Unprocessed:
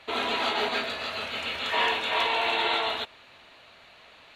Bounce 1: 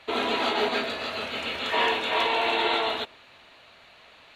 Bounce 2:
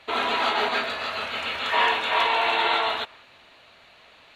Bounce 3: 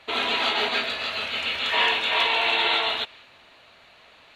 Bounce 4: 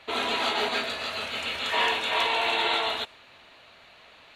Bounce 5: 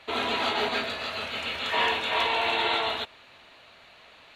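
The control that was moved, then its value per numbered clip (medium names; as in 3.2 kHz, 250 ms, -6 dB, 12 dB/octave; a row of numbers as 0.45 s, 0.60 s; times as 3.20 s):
dynamic bell, frequency: 320 Hz, 1.2 kHz, 3 kHz, 9 kHz, 100 Hz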